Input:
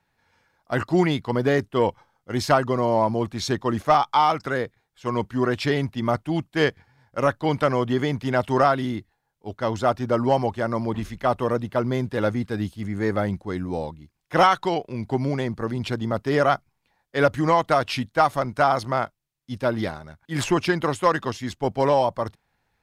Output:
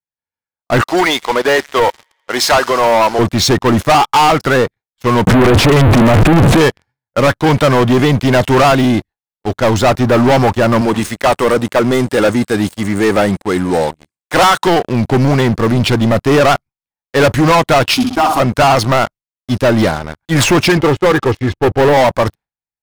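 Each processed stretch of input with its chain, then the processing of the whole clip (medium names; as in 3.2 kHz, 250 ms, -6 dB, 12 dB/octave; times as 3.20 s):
0.81–3.19 s: high-pass 590 Hz + feedback echo behind a high-pass 84 ms, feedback 84%, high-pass 1.8 kHz, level -19 dB
5.27–6.61 s: one-bit comparator + low-pass 9.5 kHz + tilt shelf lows +7 dB, about 1.3 kHz
10.81–14.67 s: high-pass 290 Hz 6 dB/octave + peaking EQ 8.4 kHz +12 dB 0.46 oct
17.94–18.40 s: compression 4:1, threshold -20 dBFS + static phaser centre 520 Hz, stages 6 + flutter echo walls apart 10.8 m, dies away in 0.58 s
20.77–21.97 s: tape spacing loss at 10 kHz 37 dB + comb 2.4 ms
whole clip: gate with hold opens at -47 dBFS; waveshaping leveller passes 5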